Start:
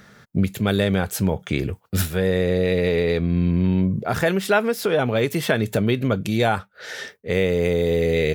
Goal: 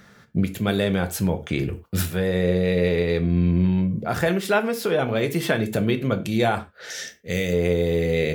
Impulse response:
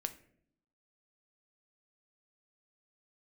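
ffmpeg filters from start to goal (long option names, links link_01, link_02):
-filter_complex "[0:a]asettb=1/sr,asplit=3[link_01][link_02][link_03];[link_01]atrim=end=6.904[link_04];[link_02]atrim=start=6.9:end=7.53,asetpts=PTS-STARTPTS,afade=type=in:duration=0.004:curve=qsin,afade=type=out:start_time=0.626:duration=0.004:curve=qsin,equalizer=frequency=400:width_type=o:width=0.67:gain=-6,equalizer=frequency=1000:width_type=o:width=0.67:gain=-11,equalizer=frequency=6300:width_type=o:width=0.67:gain=11,equalizer=frequency=16000:width_type=o:width=0.67:gain=11[link_05];[link_03]atrim=start=7.526[link_06];[link_04][link_05]acrossfade=duration=0.004:curve1=hsin:curve2=qsin[link_07];[link_07][link_06]acrossfade=duration=0.004:curve1=qsin:curve2=hsin[link_08];[1:a]atrim=start_sample=2205,afade=type=out:start_time=0.18:duration=0.01,atrim=end_sample=8379,asetrate=48510,aresample=44100[link_09];[link_08][link_09]afir=irnorm=-1:irlink=0"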